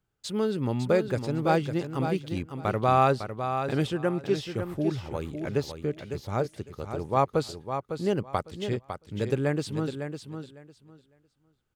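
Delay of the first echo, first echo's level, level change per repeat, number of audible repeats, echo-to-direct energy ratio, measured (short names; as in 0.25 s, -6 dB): 0.554 s, -8.0 dB, -15.0 dB, 2, -8.0 dB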